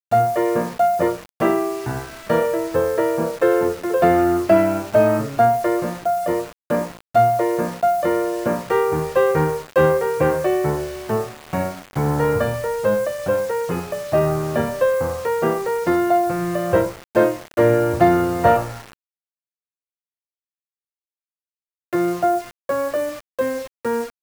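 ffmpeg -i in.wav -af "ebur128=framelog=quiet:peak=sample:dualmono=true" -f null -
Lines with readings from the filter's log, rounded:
Integrated loudness:
  I:         -16.9 LUFS
  Threshold: -27.0 LUFS
Loudness range:
  LRA:         6.9 LU
  Threshold: -37.4 LUFS
  LRA low:   -22.0 LUFS
  LRA high:  -15.1 LUFS
Sample peak:
  Peak:       -2.1 dBFS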